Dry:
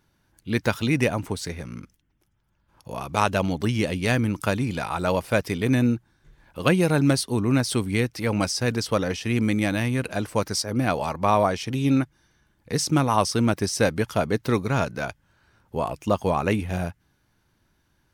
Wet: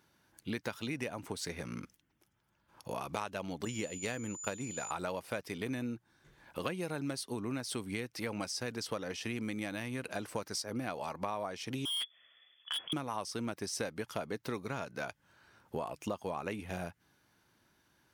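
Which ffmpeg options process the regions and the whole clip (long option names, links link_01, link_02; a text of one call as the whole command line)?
ffmpeg -i in.wav -filter_complex "[0:a]asettb=1/sr,asplit=3[link_01][link_02][link_03];[link_01]atrim=end=3.654[link_04];[link_02]atrim=start=3.65:end=4.91,asetpts=PTS-STARTPTS,afade=type=in:duration=0.004:curve=qsin,afade=type=out:start_time=1.256:duration=0.004:curve=qsin,agate=range=-33dB:threshold=-24dB:ratio=3:release=100:detection=peak,equalizer=frequency=490:width_type=o:width=0.27:gain=4,aeval=exprs='val(0)+0.0158*sin(2*PI*7000*n/s)':channel_layout=same[link_05];[link_03]atrim=start=4.906[link_06];[link_04][link_05]acrossfade=duration=0.004:curve1=hsin:curve2=qsin[link_07];[link_07][link_06]acrossfade=duration=0.004:curve1=qsin:curve2=hsin,asettb=1/sr,asplit=3[link_08][link_09][link_10];[link_08]atrim=end=11.854[link_11];[link_09]atrim=start=11.85:end=12.93,asetpts=PTS-STARTPTS,afade=type=in:duration=0.004:curve=qsin,afade=type=out:start_time=1.076:duration=0.004:curve=qsin,lowpass=frequency=3000:width_type=q:width=0.5098,lowpass=frequency=3000:width_type=q:width=0.6013,lowpass=frequency=3000:width_type=q:width=0.9,lowpass=frequency=3000:width_type=q:width=2.563,afreqshift=-3500,asoftclip=type=hard:threshold=-26dB[link_12];[link_10]atrim=start=12.926[link_13];[link_11][link_12]acrossfade=duration=0.004:curve1=hsin:curve2=qsin[link_14];[link_14][link_13]acrossfade=duration=0.004:curve1=qsin:curve2=hsin,highpass=frequency=250:poles=1,acompressor=threshold=-35dB:ratio=6" out.wav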